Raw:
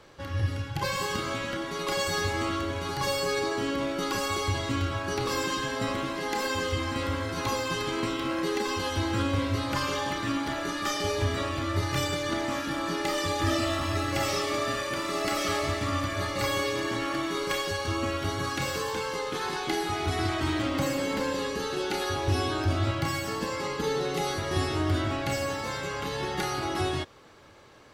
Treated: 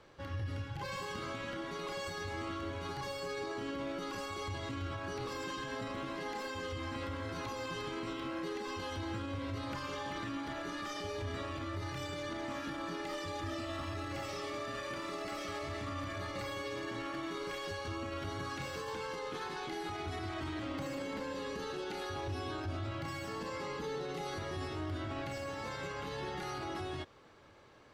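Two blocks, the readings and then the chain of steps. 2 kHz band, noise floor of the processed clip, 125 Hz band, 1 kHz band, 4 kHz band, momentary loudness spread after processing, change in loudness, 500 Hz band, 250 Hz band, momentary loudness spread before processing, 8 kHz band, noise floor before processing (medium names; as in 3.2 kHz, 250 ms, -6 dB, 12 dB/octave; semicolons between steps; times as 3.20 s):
-10.5 dB, -43 dBFS, -11.0 dB, -10.0 dB, -12.5 dB, 1 LU, -11.0 dB, -10.0 dB, -10.5 dB, 4 LU, -15.0 dB, -35 dBFS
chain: peak limiter -25 dBFS, peak gain reduction 9 dB; treble shelf 6.3 kHz -9 dB; trim -6 dB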